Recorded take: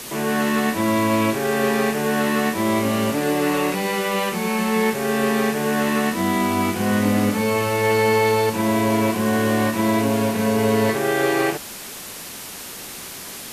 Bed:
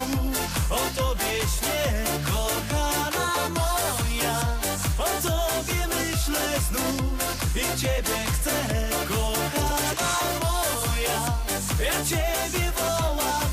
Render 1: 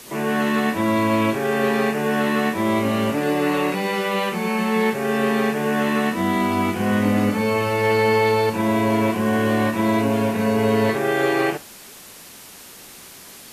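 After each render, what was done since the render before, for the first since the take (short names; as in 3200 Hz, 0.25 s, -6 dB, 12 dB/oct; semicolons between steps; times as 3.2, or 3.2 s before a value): noise print and reduce 7 dB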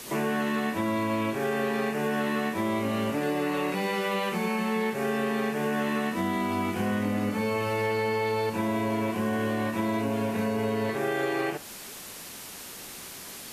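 compressor, threshold -25 dBFS, peak gain reduction 10.5 dB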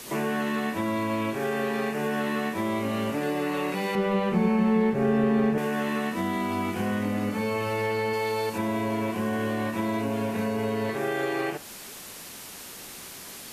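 3.95–5.58 tilt -3.5 dB/oct; 8.13–8.58 tone controls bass -4 dB, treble +5 dB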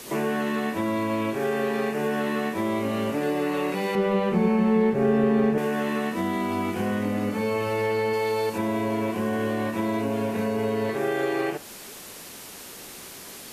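bell 420 Hz +3.5 dB 1.3 oct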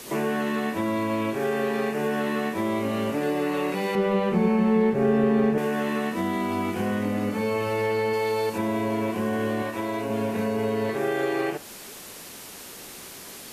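9.62–10.1 bell 170 Hz -13 dB 0.91 oct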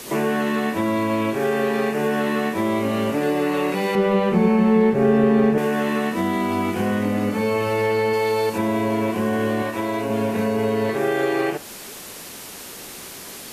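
gain +4.5 dB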